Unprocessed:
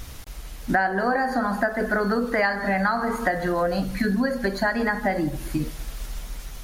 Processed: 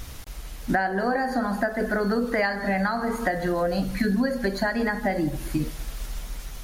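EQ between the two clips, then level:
dynamic equaliser 1,200 Hz, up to −5 dB, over −34 dBFS, Q 1.1
0.0 dB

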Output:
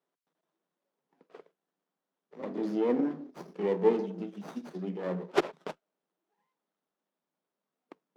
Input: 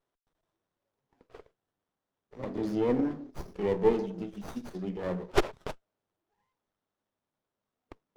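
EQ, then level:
elliptic high-pass filter 160 Hz
high-shelf EQ 7,000 Hz −8.5 dB
0.0 dB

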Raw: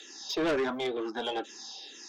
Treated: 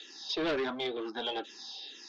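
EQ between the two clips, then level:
low-pass with resonance 4,200 Hz, resonance Q 1.9
−3.5 dB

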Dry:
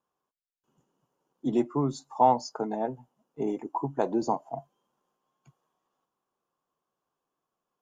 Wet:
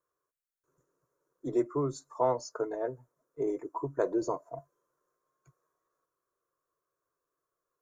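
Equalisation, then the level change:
phaser with its sweep stopped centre 810 Hz, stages 6
notch filter 4,900 Hz, Q 11
+1.0 dB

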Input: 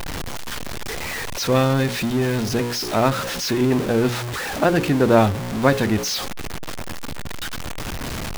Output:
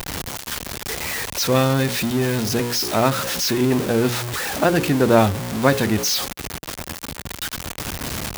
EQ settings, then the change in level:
high-pass filter 44 Hz
high-shelf EQ 4,400 Hz +5 dB
high-shelf EQ 9,600 Hz +3.5 dB
0.0 dB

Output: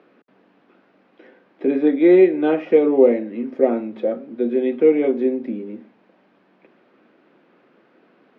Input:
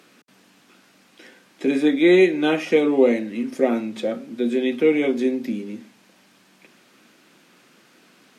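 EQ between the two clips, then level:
high-frequency loss of the air 320 metres
parametric band 480 Hz +13 dB 2.5 octaves
parametric band 1,800 Hz +2.5 dB 1.7 octaves
−8.5 dB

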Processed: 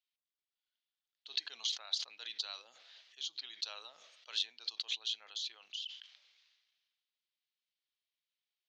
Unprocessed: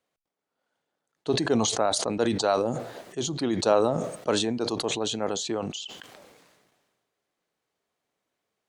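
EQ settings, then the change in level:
flat-topped band-pass 4,400 Hz, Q 1.3
high-frequency loss of the air 210 metres
+2.0 dB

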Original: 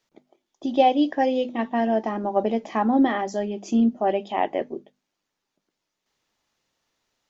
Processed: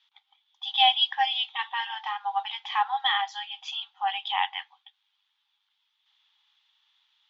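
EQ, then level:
linear-phase brick-wall high-pass 760 Hz
low-pass with resonance 3,400 Hz, resonance Q 8
0.0 dB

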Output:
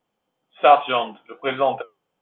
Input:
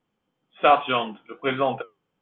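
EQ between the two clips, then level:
parametric band 670 Hz +9.5 dB 1.4 octaves
high-shelf EQ 2,300 Hz +9 dB
−5.0 dB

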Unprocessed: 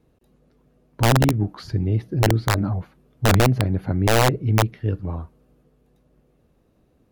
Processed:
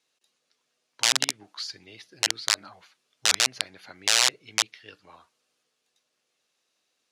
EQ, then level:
resonant band-pass 5,900 Hz, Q 0.88
high-frequency loss of the air 62 metres
spectral tilt +3 dB per octave
+5.0 dB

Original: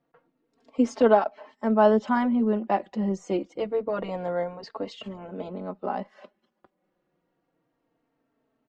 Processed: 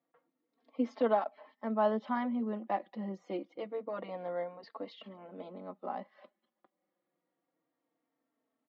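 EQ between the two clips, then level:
loudspeaker in its box 310–3,800 Hz, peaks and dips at 410 Hz −10 dB, 640 Hz −4 dB, 910 Hz −5 dB, 1,500 Hz −8 dB, 2,700 Hz −8 dB
−4.0 dB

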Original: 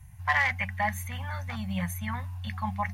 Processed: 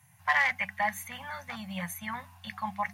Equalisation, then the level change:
high-pass filter 120 Hz 24 dB per octave
low-shelf EQ 190 Hz −11 dB
0.0 dB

